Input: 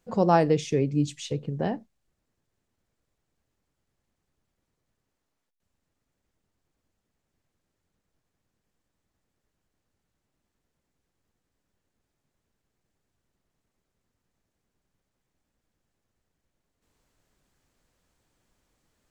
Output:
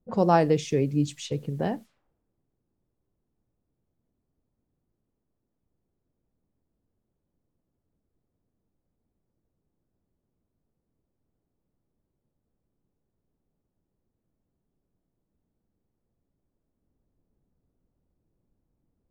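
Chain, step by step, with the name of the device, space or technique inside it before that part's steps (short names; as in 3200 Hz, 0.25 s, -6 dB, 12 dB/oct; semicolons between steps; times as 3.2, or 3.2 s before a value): cassette deck with a dynamic noise filter (white noise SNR 30 dB; low-pass opened by the level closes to 300 Hz, open at -29 dBFS)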